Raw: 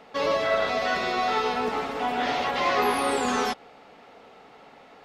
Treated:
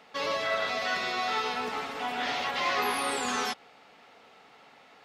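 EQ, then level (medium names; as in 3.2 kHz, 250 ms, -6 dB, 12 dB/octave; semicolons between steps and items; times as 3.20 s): high-pass 65 Hz; bass shelf 190 Hz -7.5 dB; peaking EQ 460 Hz -7.5 dB 2.7 oct; 0.0 dB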